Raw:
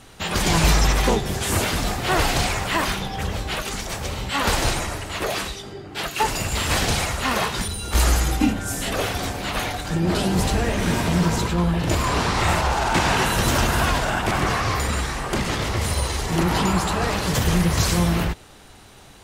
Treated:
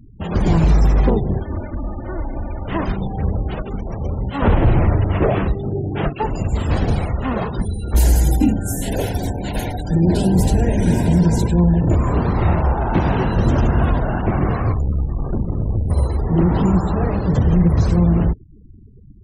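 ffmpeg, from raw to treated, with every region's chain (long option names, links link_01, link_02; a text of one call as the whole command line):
ffmpeg -i in.wav -filter_complex "[0:a]asettb=1/sr,asplit=3[link_01][link_02][link_03];[link_01]atrim=end=1.404[link_04];[link_02]atrim=start=1.4:end=2.68,asetpts=PTS-STARTPTS,afade=type=in:duration=0.004:curve=qsin,afade=type=out:start_time=1.276:duration=0.004:curve=qsin,equalizer=frequency=2700:width_type=o:width=0.4:gain=-3.5,aecho=1:1:3.4:0.66,atrim=end_sample=56448,acrossover=split=100|690|3100[link_05][link_06][link_07][link_08];[link_05]acompressor=threshold=-34dB:ratio=3[link_09];[link_06]acompressor=threshold=-38dB:ratio=3[link_10];[link_07]acompressor=threshold=-35dB:ratio=3[link_11];[link_08]acompressor=threshold=-44dB:ratio=3[link_12];[link_09][link_10][link_11][link_12]amix=inputs=4:normalize=0[link_13];[link_03]atrim=start=2.676[link_14];[link_04][link_13]acrossfade=duration=0.004:curve1=hsin:curve2=qsin[link_15];[link_15][link_14]acrossfade=duration=0.004:curve1=qsin:curve2=hsin,asettb=1/sr,asplit=3[link_16][link_17][link_18];[link_16]atrim=end=4.424[link_19];[link_17]atrim=start=4.42:end=6.13,asetpts=PTS-STARTPTS,afade=type=in:duration=0.004:curve=qsin,afade=type=out:start_time=1.706:duration=0.004:curve=qsin,lowpass=frequency=3100:width=0.5412,lowpass=frequency=3100:width=1.3066,equalizer=frequency=110:width_type=o:width=1:gain=5,acontrast=82[link_20];[link_18]atrim=start=6.126[link_21];[link_19][link_20]acrossfade=duration=0.004:curve1=hsin:curve2=qsin[link_22];[link_22][link_21]acrossfade=duration=0.004:curve1=qsin:curve2=hsin,asettb=1/sr,asplit=3[link_23][link_24][link_25];[link_23]atrim=end=7.964[link_26];[link_24]atrim=start=7.96:end=11.81,asetpts=PTS-STARTPTS,afade=type=in:duration=0.004:curve=qsin,afade=type=out:start_time=3.846:duration=0.004:curve=qsin,asuperstop=centerf=1200:order=4:qfactor=3.3,aemphasis=mode=production:type=75kf[link_27];[link_25]atrim=start=11.806[link_28];[link_26][link_27]acrossfade=duration=0.004:curve1=hsin:curve2=qsin[link_29];[link_29][link_28]acrossfade=duration=0.004:curve1=qsin:curve2=hsin,asettb=1/sr,asplit=3[link_30][link_31][link_32];[link_30]atrim=end=14.724[link_33];[link_31]atrim=start=14.72:end=15.9,asetpts=PTS-STARTPTS,afade=type=in:duration=0.004:curve=qsin,afade=type=out:start_time=1.176:duration=0.004:curve=qsin,lowshelf=frequency=220:gain=9.5,acrossover=split=3100|7100[link_34][link_35][link_36];[link_34]acompressor=threshold=-21dB:ratio=4[link_37];[link_35]acompressor=threshold=-41dB:ratio=4[link_38];[link_36]acompressor=threshold=-39dB:ratio=4[link_39];[link_37][link_38][link_39]amix=inputs=3:normalize=0,aeval=exprs='(tanh(10*val(0)+0.6)-tanh(0.6))/10':channel_layout=same[link_40];[link_32]atrim=start=15.896[link_41];[link_33][link_40]acrossfade=duration=0.004:curve1=hsin:curve2=qsin[link_42];[link_42][link_41]acrossfade=duration=0.004:curve1=qsin:curve2=hsin,tiltshelf=frequency=830:gain=9.5,afftfilt=real='re*gte(hypot(re,im),0.0316)':imag='im*gte(hypot(re,im),0.0316)':win_size=1024:overlap=0.75,alimiter=level_in=3.5dB:limit=-1dB:release=50:level=0:latency=1,volume=-5dB" out.wav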